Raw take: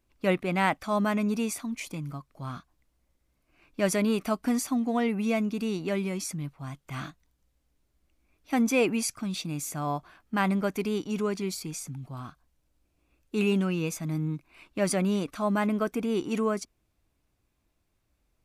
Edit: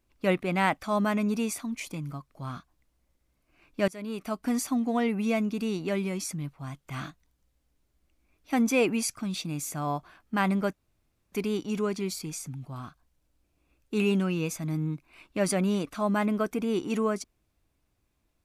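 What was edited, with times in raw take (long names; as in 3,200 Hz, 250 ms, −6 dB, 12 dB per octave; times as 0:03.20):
0:03.88–0:04.63: fade in, from −23 dB
0:10.73: splice in room tone 0.59 s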